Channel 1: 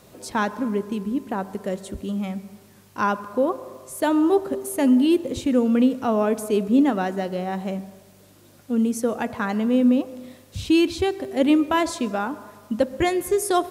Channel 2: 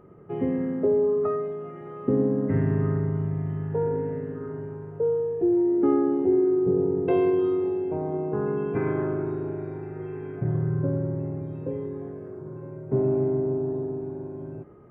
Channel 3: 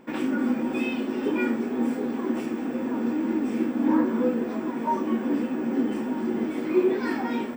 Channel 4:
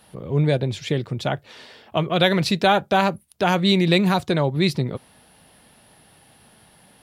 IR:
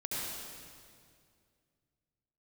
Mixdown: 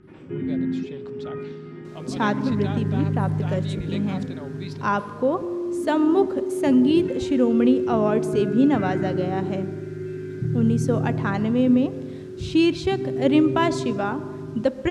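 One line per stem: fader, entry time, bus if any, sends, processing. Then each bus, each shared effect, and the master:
-0.5 dB, 1.85 s, no send, dry
+2.0 dB, 0.00 s, no send, negative-ratio compressor -26 dBFS; Chebyshev band-stop 380–1400 Hz, order 4
-18.0 dB, 0.00 s, no send, compressor, threshold -24 dBFS, peak gain reduction 8.5 dB
-19.0 dB, 0.00 s, no send, gate with hold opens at -45 dBFS; sustainer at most 75 dB/s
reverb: off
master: LPF 6400 Hz 12 dB/oct

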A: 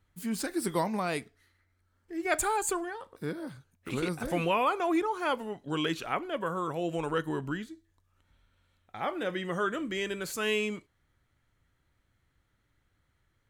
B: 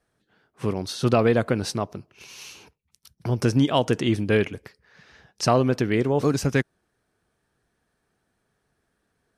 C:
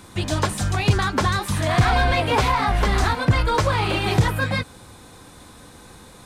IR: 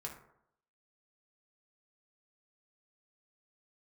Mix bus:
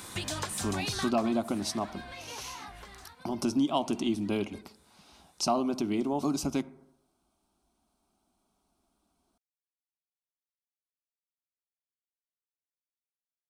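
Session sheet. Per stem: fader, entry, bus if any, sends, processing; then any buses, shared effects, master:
off
0.0 dB, 0.00 s, send -8.5 dB, fixed phaser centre 470 Hz, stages 6
1.06 s -0.5 dB -> 1.33 s -13 dB -> 2.64 s -13 dB -> 3.21 s -22.5 dB, 0.00 s, no send, tilt +2 dB/oct; compressor 6:1, threshold -29 dBFS, peak gain reduction 13 dB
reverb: on, RT60 0.75 s, pre-delay 3 ms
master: compressor 1.5:1, threshold -35 dBFS, peak gain reduction 7 dB

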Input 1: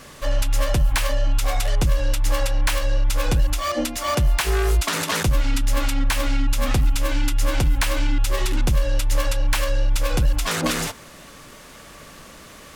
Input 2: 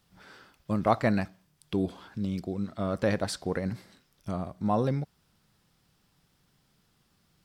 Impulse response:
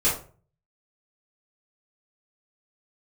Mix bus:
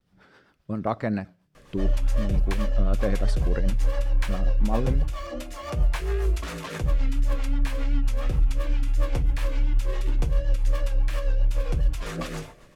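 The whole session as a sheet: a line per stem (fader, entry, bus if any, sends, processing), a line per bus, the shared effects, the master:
-8.0 dB, 1.55 s, send -17.5 dB, notch 1500 Hz, Q 23
+1.0 dB, 0.00 s, no send, vibrato 0.51 Hz 34 cents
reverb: on, RT60 0.40 s, pre-delay 3 ms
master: high shelf 3200 Hz -10 dB; rotary speaker horn 7.5 Hz; vibrato 2.8 Hz 50 cents

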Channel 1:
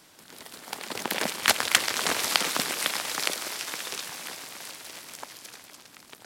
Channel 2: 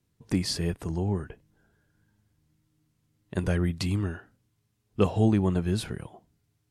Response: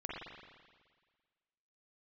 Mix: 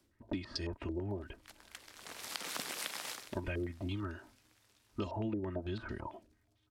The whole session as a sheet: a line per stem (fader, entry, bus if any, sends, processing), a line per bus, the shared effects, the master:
1.32 s -18.5 dB -> 1.93 s -6 dB -> 3.07 s -6 dB -> 3.3 s -14.5 dB, 0.00 s, no send, echo send -22.5 dB, auto duck -21 dB, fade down 0.20 s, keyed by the second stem
-3.0 dB, 0.00 s, no send, no echo send, notch 750 Hz, Q 12; comb 3.2 ms, depth 87%; stepped low-pass 9 Hz 490–4900 Hz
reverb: off
echo: echo 0.774 s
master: compressor 4:1, threshold -37 dBFS, peak gain reduction 16 dB

